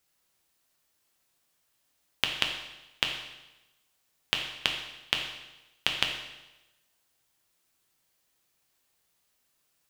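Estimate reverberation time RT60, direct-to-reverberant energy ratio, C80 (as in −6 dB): 1.0 s, 2.0 dB, 8.0 dB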